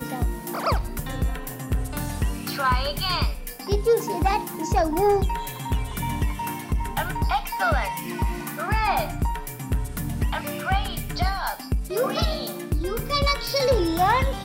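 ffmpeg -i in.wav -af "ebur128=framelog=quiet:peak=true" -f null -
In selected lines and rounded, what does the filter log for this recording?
Integrated loudness:
  I:         -25.4 LUFS
  Threshold: -35.4 LUFS
Loudness range:
  LRA:         3.1 LU
  Threshold: -45.6 LUFS
  LRA low:   -26.9 LUFS
  LRA high:  -23.8 LUFS
True peak:
  Peak:      -11.9 dBFS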